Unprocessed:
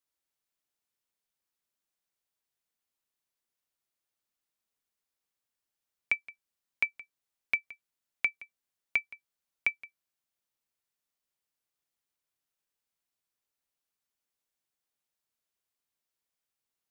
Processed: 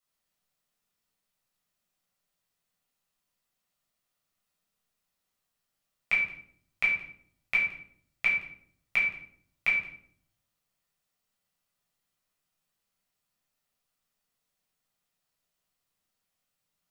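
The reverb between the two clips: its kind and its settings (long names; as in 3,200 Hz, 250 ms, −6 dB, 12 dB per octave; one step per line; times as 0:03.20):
rectangular room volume 840 cubic metres, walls furnished, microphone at 6.6 metres
level −1.5 dB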